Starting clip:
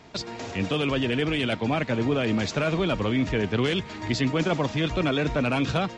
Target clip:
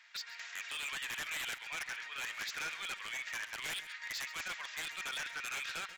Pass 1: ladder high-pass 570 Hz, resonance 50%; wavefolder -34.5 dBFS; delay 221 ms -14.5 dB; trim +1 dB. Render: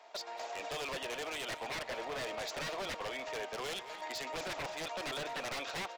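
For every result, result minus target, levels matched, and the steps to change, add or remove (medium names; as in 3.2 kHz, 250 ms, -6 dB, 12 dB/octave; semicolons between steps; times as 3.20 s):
500 Hz band +17.5 dB; echo 86 ms late
change: ladder high-pass 1.5 kHz, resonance 50%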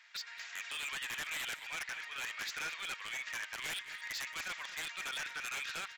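echo 86 ms late
change: delay 135 ms -14.5 dB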